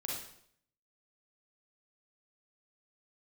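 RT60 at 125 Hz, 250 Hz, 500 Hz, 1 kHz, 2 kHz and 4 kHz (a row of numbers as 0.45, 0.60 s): 0.75, 0.70, 0.70, 0.65, 0.60, 0.60 s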